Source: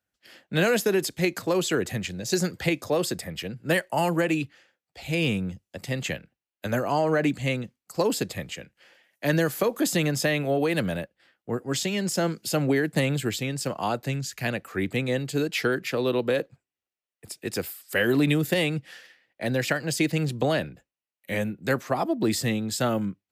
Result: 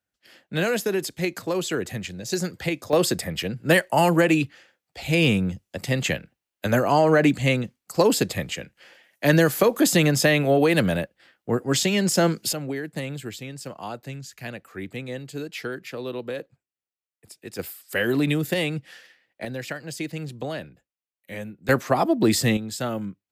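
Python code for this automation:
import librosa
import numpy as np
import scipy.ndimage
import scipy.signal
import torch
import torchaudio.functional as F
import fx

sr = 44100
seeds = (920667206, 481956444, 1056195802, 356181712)

y = fx.gain(x, sr, db=fx.steps((0.0, -1.5), (2.93, 5.5), (12.53, -7.0), (17.59, -0.5), (19.45, -7.0), (21.69, 5.0), (22.57, -3.0)))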